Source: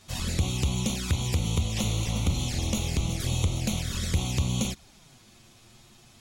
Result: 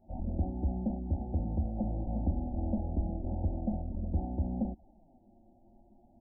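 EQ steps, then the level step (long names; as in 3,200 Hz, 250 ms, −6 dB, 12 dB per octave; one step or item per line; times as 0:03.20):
linear-phase brick-wall low-pass 1,000 Hz
phaser with its sweep stopped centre 660 Hz, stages 8
0.0 dB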